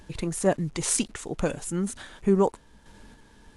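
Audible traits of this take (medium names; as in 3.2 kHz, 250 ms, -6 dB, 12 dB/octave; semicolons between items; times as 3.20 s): a quantiser's noise floor 10-bit, dither none; random-step tremolo; AAC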